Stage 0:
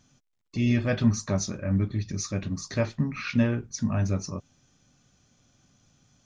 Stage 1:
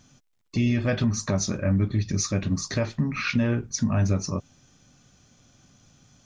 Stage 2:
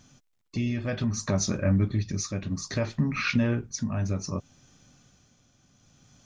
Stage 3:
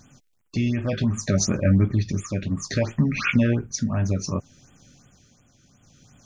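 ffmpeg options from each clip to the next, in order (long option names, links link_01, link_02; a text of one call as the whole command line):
ffmpeg -i in.wav -af "alimiter=limit=-20.5dB:level=0:latency=1:release=168,volume=6dB" out.wav
ffmpeg -i in.wav -af "tremolo=f=0.63:d=0.51" out.wav
ffmpeg -i in.wav -af "afftfilt=real='re*(1-between(b*sr/1024,830*pow(5000/830,0.5+0.5*sin(2*PI*2.8*pts/sr))/1.41,830*pow(5000/830,0.5+0.5*sin(2*PI*2.8*pts/sr))*1.41))':imag='im*(1-between(b*sr/1024,830*pow(5000/830,0.5+0.5*sin(2*PI*2.8*pts/sr))/1.41,830*pow(5000/830,0.5+0.5*sin(2*PI*2.8*pts/sr))*1.41))':win_size=1024:overlap=0.75,volume=5dB" out.wav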